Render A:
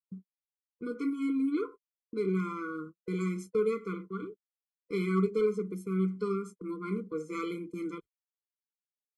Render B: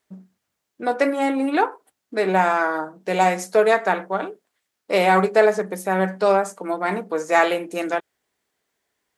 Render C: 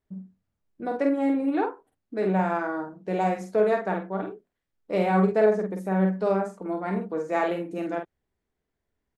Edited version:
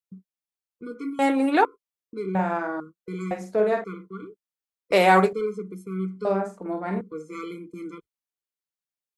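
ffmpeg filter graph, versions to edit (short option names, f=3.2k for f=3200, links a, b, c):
-filter_complex "[1:a]asplit=2[a][b];[2:a]asplit=3[c][d][e];[0:a]asplit=6[f][g][h][i][j][k];[f]atrim=end=1.192[l];[a]atrim=start=1.188:end=1.652[m];[g]atrim=start=1.648:end=2.352[n];[c]atrim=start=2.348:end=2.802[o];[h]atrim=start=2.798:end=3.312[p];[d]atrim=start=3.308:end=3.842[q];[i]atrim=start=3.838:end=4.922[r];[b]atrim=start=4.918:end=5.332[s];[j]atrim=start=5.328:end=6.252[t];[e]atrim=start=6.248:end=7.012[u];[k]atrim=start=7.008[v];[l][m]acrossfade=d=0.004:c1=hsin:c2=hsin[w];[w][n]acrossfade=d=0.004:c1=hsin:c2=hsin[x];[x][o]acrossfade=d=0.004:c1=hsin:c2=hsin[y];[y][p]acrossfade=d=0.004:c1=hsin:c2=hsin[z];[z][q]acrossfade=d=0.004:c1=hsin:c2=hsin[aa];[aa][r]acrossfade=d=0.004:c1=hsin:c2=hsin[ab];[ab][s]acrossfade=d=0.004:c1=hsin:c2=hsin[ac];[ac][t]acrossfade=d=0.004:c1=hsin:c2=hsin[ad];[ad][u]acrossfade=d=0.004:c1=hsin:c2=hsin[ae];[ae][v]acrossfade=d=0.004:c1=hsin:c2=hsin"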